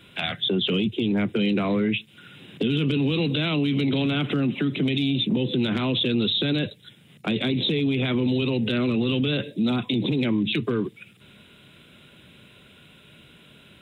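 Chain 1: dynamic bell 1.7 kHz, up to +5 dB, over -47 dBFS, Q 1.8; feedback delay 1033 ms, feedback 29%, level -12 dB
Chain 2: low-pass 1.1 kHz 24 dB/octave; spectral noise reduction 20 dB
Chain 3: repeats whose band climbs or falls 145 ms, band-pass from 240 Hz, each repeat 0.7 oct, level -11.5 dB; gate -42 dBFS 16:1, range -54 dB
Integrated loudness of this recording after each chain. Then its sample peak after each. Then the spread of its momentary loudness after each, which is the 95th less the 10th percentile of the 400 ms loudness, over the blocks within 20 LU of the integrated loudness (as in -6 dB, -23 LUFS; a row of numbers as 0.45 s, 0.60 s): -23.5 LUFS, -25.5 LUFS, -24.0 LUFS; -10.5 dBFS, -14.0 dBFS, -12.0 dBFS; 12 LU, 5 LU, 5 LU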